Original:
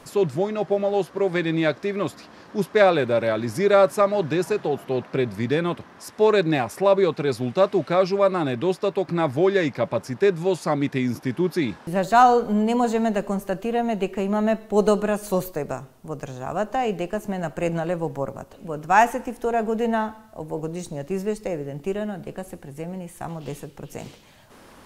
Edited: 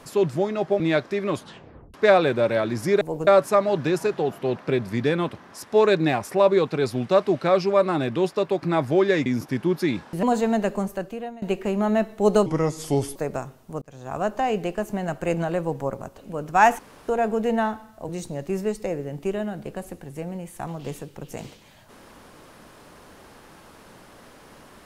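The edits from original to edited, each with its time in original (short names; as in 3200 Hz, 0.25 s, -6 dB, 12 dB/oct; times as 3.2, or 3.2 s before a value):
0.8–1.52 cut
2.07 tape stop 0.59 s
9.72–11 cut
11.97–12.75 cut
13.29–13.94 fade out, to -23.5 dB
14.98–15.51 speed 76%
16.17–16.52 fade in
19.14–19.43 room tone
20.44–20.7 move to 3.73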